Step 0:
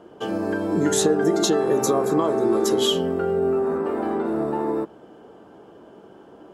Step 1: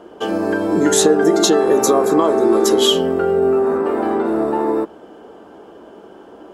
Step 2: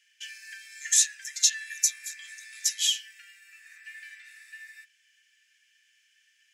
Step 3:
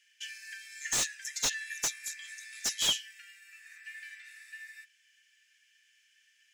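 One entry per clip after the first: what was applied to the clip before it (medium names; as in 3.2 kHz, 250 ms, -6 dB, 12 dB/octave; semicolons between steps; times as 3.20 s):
peaking EQ 130 Hz -11 dB 0.85 oct; trim +7 dB
rippled Chebyshev high-pass 1.7 kHz, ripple 9 dB
slew-rate limiter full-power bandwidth 310 Hz; trim -1 dB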